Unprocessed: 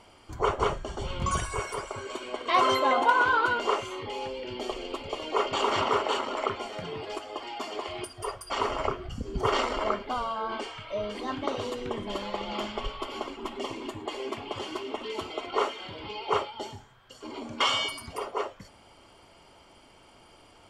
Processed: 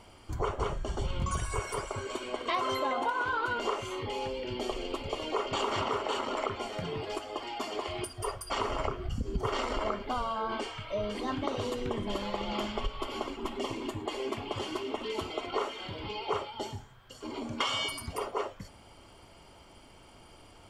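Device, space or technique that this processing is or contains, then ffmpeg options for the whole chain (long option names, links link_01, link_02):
ASMR close-microphone chain: -af "lowshelf=frequency=190:gain=7.5,acompressor=threshold=-26dB:ratio=10,highshelf=frequency=11000:gain=7.5,volume=-1dB"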